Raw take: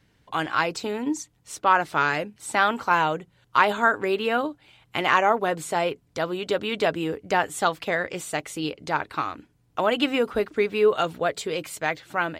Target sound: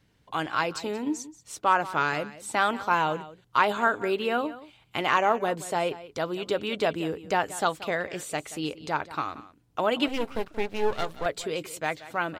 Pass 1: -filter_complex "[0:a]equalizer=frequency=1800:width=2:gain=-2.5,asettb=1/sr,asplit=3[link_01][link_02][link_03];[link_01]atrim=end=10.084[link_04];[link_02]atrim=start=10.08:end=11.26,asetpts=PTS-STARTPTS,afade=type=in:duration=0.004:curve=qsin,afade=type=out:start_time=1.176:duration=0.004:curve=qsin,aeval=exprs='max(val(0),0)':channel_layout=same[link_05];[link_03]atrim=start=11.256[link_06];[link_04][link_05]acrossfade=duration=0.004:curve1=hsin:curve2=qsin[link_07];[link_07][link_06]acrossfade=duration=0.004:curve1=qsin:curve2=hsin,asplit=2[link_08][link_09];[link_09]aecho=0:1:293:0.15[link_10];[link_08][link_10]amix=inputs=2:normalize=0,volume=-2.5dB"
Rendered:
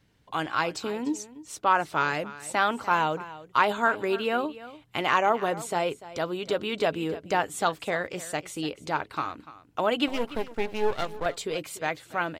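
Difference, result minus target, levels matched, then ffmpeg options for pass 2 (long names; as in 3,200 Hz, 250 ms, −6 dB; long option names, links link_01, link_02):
echo 113 ms late
-filter_complex "[0:a]equalizer=frequency=1800:width=2:gain=-2.5,asettb=1/sr,asplit=3[link_01][link_02][link_03];[link_01]atrim=end=10.084[link_04];[link_02]atrim=start=10.08:end=11.26,asetpts=PTS-STARTPTS,afade=type=in:duration=0.004:curve=qsin,afade=type=out:start_time=1.176:duration=0.004:curve=qsin,aeval=exprs='max(val(0),0)':channel_layout=same[link_05];[link_03]atrim=start=11.256[link_06];[link_04][link_05]acrossfade=duration=0.004:curve1=hsin:curve2=qsin[link_07];[link_07][link_06]acrossfade=duration=0.004:curve1=qsin:curve2=hsin,asplit=2[link_08][link_09];[link_09]aecho=0:1:180:0.15[link_10];[link_08][link_10]amix=inputs=2:normalize=0,volume=-2.5dB"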